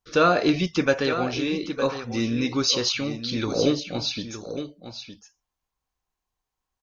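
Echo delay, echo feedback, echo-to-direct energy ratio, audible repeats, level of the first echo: 912 ms, repeats not evenly spaced, −10.5 dB, 1, −10.5 dB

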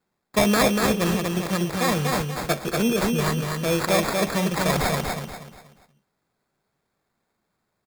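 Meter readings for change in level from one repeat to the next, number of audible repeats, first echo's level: −9.5 dB, 4, −3.5 dB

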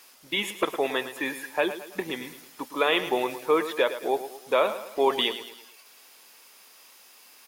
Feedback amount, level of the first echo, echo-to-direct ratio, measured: 44%, −12.0 dB, −11.0 dB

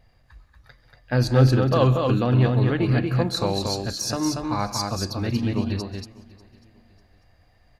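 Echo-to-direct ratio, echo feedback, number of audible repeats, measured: −3.5 dB, repeats not evenly spaced, 6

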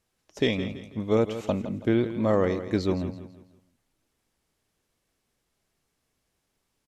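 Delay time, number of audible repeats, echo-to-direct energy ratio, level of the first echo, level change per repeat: 165 ms, 3, −11.5 dB, −12.0 dB, −9.0 dB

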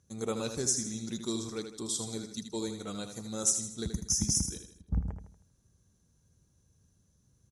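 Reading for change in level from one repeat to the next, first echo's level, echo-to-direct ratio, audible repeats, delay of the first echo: −7.5 dB, −8.0 dB, −7.0 dB, 4, 79 ms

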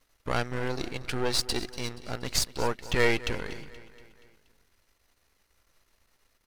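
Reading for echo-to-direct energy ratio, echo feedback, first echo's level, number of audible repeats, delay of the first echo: −15.5 dB, 54%, −17.0 dB, 4, 238 ms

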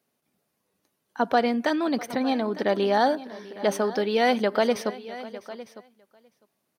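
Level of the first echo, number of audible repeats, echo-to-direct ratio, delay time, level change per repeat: −19.5 dB, 2, −14.5 dB, 652 ms, repeats not evenly spaced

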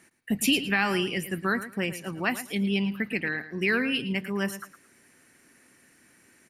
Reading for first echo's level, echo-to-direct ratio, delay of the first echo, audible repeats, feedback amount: −13.0 dB, −13.0 dB, 111 ms, 2, 21%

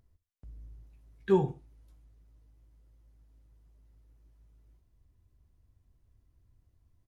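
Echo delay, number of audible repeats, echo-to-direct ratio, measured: 65 ms, 2, −17.0 dB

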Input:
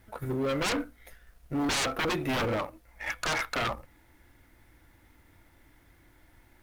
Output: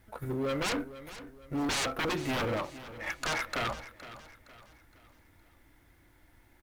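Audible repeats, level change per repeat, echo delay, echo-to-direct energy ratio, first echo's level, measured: 3, −8.0 dB, 465 ms, −14.0 dB, −15.0 dB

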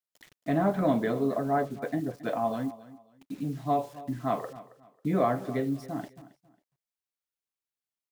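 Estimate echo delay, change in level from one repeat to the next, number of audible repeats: 272 ms, −11.5 dB, 2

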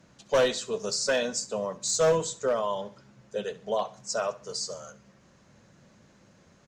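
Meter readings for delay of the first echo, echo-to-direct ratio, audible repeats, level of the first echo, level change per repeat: 67 ms, −17.0 dB, 3, −17.5 dB, −8.5 dB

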